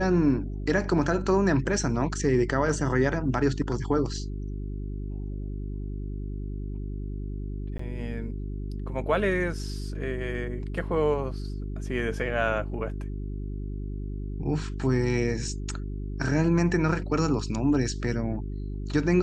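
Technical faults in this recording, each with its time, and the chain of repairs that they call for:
hum 50 Hz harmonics 8 -33 dBFS
7.78–7.79 gap 14 ms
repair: de-hum 50 Hz, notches 8; interpolate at 7.78, 14 ms

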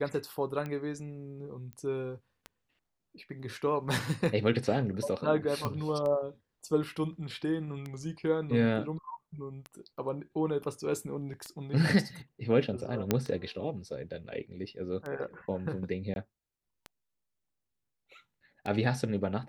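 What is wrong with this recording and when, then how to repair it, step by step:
tick 33 1/3 rpm -25 dBFS
1.73 pop -31 dBFS
5.65 pop -18 dBFS
13.11 pop -11 dBFS
16.14–16.16 gap 21 ms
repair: de-click; interpolate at 16.14, 21 ms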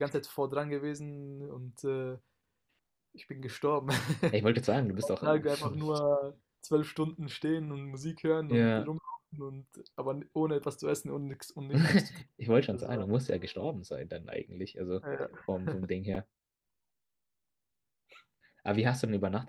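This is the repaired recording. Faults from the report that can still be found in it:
5.65 pop

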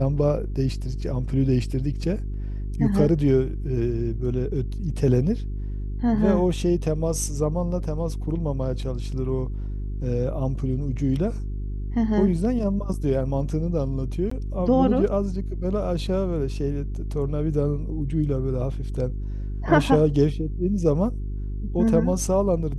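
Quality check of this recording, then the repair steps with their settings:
hum 50 Hz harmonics 8 -29 dBFS
14.3–14.31 gap 14 ms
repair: de-hum 50 Hz, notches 8; interpolate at 14.3, 14 ms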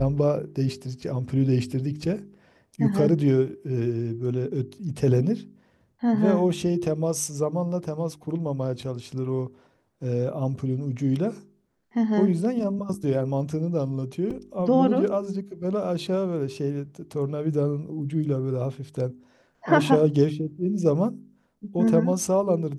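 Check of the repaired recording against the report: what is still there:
none

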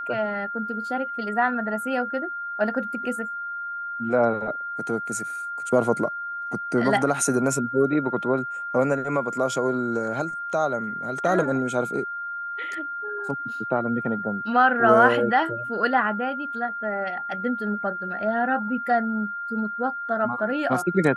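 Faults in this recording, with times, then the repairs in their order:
tone 1400 Hz -29 dBFS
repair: notch 1400 Hz, Q 30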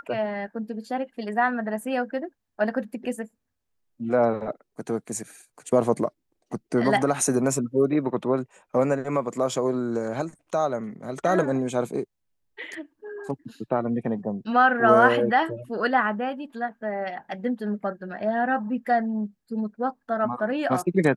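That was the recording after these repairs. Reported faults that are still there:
none

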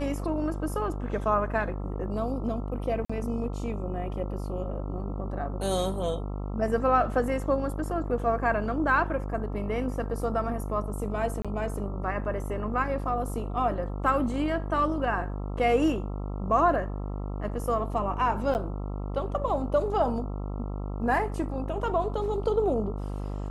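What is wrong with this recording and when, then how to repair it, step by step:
buzz 50 Hz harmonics 27 -33 dBFS
3.05–3.1 gap 45 ms
11.42–11.45 gap 26 ms
18.54–18.55 gap 9.7 ms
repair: de-hum 50 Hz, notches 27; interpolate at 3.05, 45 ms; interpolate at 11.42, 26 ms; interpolate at 18.54, 9.7 ms

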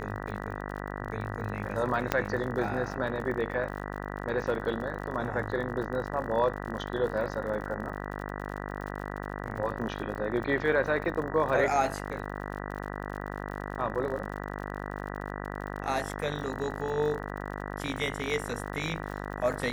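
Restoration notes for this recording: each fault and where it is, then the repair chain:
buzz 50 Hz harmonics 39 -37 dBFS
crackle 56/s -38 dBFS
2.12 pop -11 dBFS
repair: de-click; de-hum 50 Hz, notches 39

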